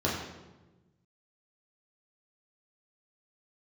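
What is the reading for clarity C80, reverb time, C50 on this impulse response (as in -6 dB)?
5.0 dB, 1.2 s, 2.5 dB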